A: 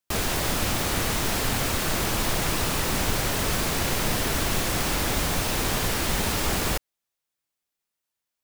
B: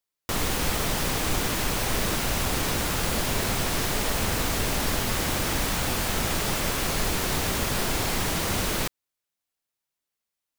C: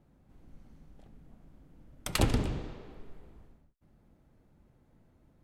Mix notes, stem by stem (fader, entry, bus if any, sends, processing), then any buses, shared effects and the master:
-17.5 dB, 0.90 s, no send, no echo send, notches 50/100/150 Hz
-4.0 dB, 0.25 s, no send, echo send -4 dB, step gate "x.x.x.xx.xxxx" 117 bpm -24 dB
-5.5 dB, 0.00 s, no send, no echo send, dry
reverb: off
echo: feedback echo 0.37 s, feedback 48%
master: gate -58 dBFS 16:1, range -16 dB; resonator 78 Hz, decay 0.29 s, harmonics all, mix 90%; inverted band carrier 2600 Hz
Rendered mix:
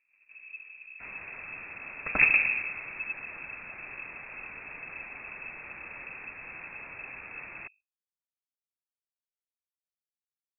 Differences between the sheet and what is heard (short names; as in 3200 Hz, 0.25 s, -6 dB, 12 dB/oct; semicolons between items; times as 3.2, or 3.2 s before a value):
stem B: muted; stem C -5.5 dB -> +3.5 dB; master: missing resonator 78 Hz, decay 0.29 s, harmonics all, mix 90%